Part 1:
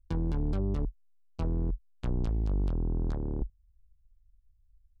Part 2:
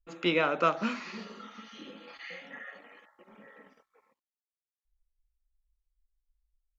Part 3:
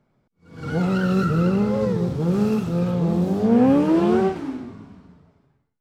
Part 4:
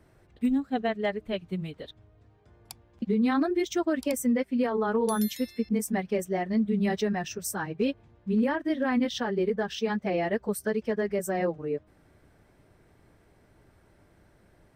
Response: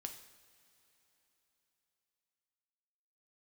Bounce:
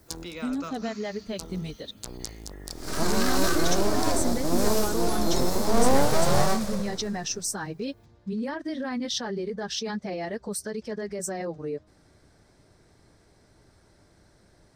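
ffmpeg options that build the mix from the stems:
-filter_complex "[0:a]bass=f=250:g=-13,treble=f=4000:g=14,volume=0.891[s0];[1:a]deesser=0.95,asubboost=boost=11.5:cutoff=200,volume=0.266,asplit=2[s1][s2];[2:a]aeval=exprs='abs(val(0))':c=same,adelay=2250,volume=0.891[s3];[3:a]alimiter=level_in=1.19:limit=0.0631:level=0:latency=1:release=35,volume=0.841,lowpass=4700,volume=1.12[s4];[s2]apad=whole_len=220523[s5];[s0][s5]sidechaincompress=threshold=0.002:ratio=8:attack=47:release=353[s6];[s6][s1][s3][s4]amix=inputs=4:normalize=0,aexciter=amount=3.6:drive=9:freq=4100"

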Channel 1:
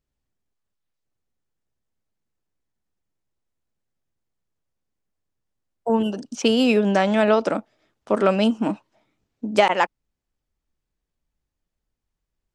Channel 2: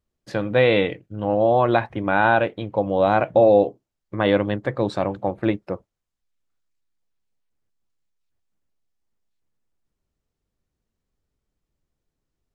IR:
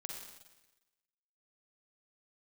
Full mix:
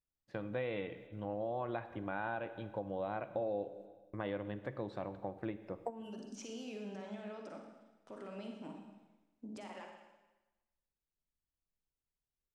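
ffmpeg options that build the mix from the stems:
-filter_complex "[0:a]acompressor=threshold=0.0562:ratio=6,alimiter=limit=0.0708:level=0:latency=1:release=16,volume=0.944,asplit=2[s0][s1];[s1]volume=0.224[s2];[1:a]acrossover=split=3500[s3][s4];[s4]acompressor=threshold=0.00282:ratio=4:attack=1:release=60[s5];[s3][s5]amix=inputs=2:normalize=0,agate=range=0.0224:threshold=0.0178:ratio=3:detection=peak,volume=0.158,asplit=3[s6][s7][s8];[s7]volume=0.447[s9];[s8]apad=whole_len=553051[s10];[s0][s10]sidechaingate=range=0.0224:threshold=0.00112:ratio=16:detection=peak[s11];[2:a]atrim=start_sample=2205[s12];[s2][s9]amix=inputs=2:normalize=0[s13];[s13][s12]afir=irnorm=-1:irlink=0[s14];[s11][s6][s14]amix=inputs=3:normalize=0,acompressor=threshold=0.0126:ratio=2.5"

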